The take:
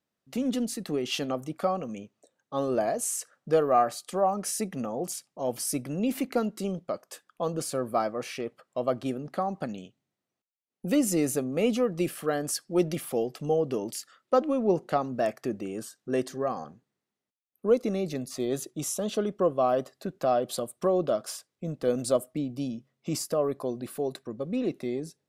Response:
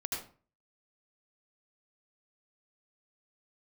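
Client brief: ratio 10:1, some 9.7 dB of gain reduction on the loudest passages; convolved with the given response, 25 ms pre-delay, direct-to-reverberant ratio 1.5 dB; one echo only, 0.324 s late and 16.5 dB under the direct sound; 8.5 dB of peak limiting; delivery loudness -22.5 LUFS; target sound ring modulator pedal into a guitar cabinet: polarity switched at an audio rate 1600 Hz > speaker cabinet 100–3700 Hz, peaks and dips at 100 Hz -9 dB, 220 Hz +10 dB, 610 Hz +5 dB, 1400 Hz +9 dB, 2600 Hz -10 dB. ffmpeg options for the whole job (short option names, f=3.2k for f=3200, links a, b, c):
-filter_complex "[0:a]acompressor=threshold=-27dB:ratio=10,alimiter=level_in=1dB:limit=-24dB:level=0:latency=1,volume=-1dB,aecho=1:1:324:0.15,asplit=2[a][b];[1:a]atrim=start_sample=2205,adelay=25[c];[b][c]afir=irnorm=-1:irlink=0,volume=-4dB[d];[a][d]amix=inputs=2:normalize=0,aeval=exprs='val(0)*sgn(sin(2*PI*1600*n/s))':c=same,highpass=100,equalizer=f=100:t=q:w=4:g=-9,equalizer=f=220:t=q:w=4:g=10,equalizer=f=610:t=q:w=4:g=5,equalizer=f=1.4k:t=q:w=4:g=9,equalizer=f=2.6k:t=q:w=4:g=-10,lowpass=f=3.7k:w=0.5412,lowpass=f=3.7k:w=1.3066,volume=7dB"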